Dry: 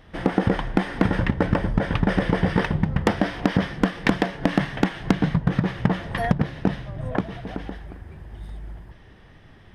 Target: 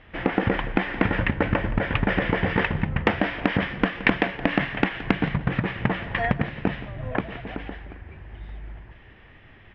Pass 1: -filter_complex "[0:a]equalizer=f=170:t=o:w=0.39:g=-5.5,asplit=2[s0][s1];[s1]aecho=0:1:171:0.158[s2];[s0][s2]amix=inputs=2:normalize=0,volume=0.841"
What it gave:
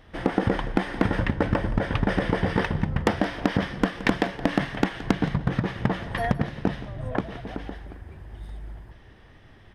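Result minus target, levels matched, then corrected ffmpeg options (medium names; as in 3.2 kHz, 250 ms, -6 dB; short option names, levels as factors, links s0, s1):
2 kHz band -4.0 dB
-filter_complex "[0:a]lowpass=f=2500:t=q:w=2.5,equalizer=f=170:t=o:w=0.39:g=-5.5,asplit=2[s0][s1];[s1]aecho=0:1:171:0.158[s2];[s0][s2]amix=inputs=2:normalize=0,volume=0.841"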